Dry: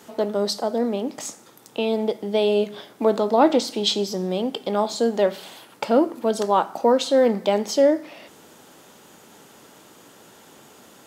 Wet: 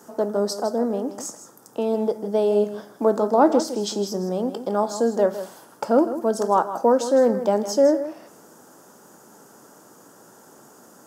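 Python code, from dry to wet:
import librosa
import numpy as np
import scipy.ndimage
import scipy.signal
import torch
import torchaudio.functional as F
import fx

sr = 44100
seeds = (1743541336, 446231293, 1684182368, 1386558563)

y = scipy.signal.sosfilt(scipy.signal.butter(2, 120.0, 'highpass', fs=sr, output='sos'), x)
y = fx.band_shelf(y, sr, hz=2900.0, db=-14.0, octaves=1.3)
y = y + 10.0 ** (-12.0 / 20.0) * np.pad(y, (int(159 * sr / 1000.0), 0))[:len(y)]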